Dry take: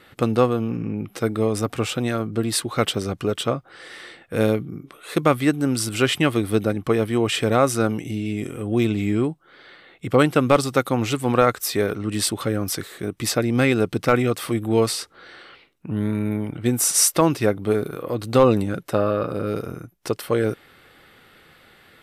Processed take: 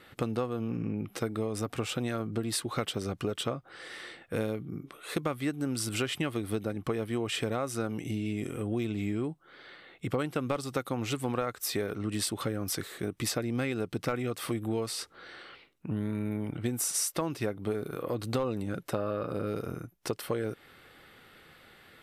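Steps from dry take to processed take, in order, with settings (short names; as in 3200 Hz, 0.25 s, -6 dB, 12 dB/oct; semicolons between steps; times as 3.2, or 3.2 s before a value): compressor, threshold -24 dBFS, peak gain reduction 13.5 dB; gain -4 dB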